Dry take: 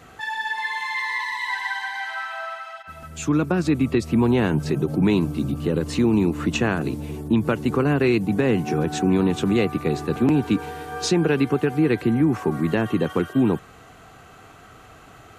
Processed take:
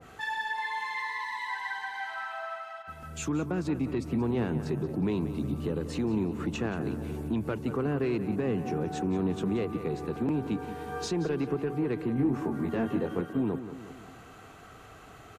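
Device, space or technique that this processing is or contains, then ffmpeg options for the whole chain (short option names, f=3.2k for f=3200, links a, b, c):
soft clipper into limiter: -filter_complex "[0:a]equalizer=f=430:t=o:w=0.24:g=2.5,asoftclip=type=tanh:threshold=-11.5dB,alimiter=limit=-18.5dB:level=0:latency=1:release=370,asettb=1/sr,asplit=3[a][b][c];[a]atrim=end=12.154[d];[b]atrim=start=12.15:end=13.21,asetpts=PTS-STARTPTS,afade=t=in:d=0.004:c=qsin,afade=t=out:st=1.056:d=0.004:c=qsin,asplit=2[e][f];[f]adelay=22,volume=-3dB[g];[e][g]amix=inputs=2:normalize=0,atrim=end_sample=46746[h];[c]atrim=start=13.206[i];[d][h]acrossfade=d=0.004:c1=hsin:c2=qsin[j];[j][i]acrossfade=d=0.004:c1=qsin:c2=hsin,asplit=2[k][l];[l]adelay=180,lowpass=f=4.1k:p=1,volume=-11dB,asplit=2[m][n];[n]adelay=180,lowpass=f=4.1k:p=1,volume=0.54,asplit=2[o][p];[p]adelay=180,lowpass=f=4.1k:p=1,volume=0.54,asplit=2[q][r];[r]adelay=180,lowpass=f=4.1k:p=1,volume=0.54,asplit=2[s][t];[t]adelay=180,lowpass=f=4.1k:p=1,volume=0.54,asplit=2[u][v];[v]adelay=180,lowpass=f=4.1k:p=1,volume=0.54[w];[k][m][o][q][s][u][w]amix=inputs=7:normalize=0,adynamicequalizer=threshold=0.00794:dfrequency=1600:dqfactor=0.7:tfrequency=1600:tqfactor=0.7:attack=5:release=100:ratio=0.375:range=3:mode=cutabove:tftype=highshelf,volume=-4dB"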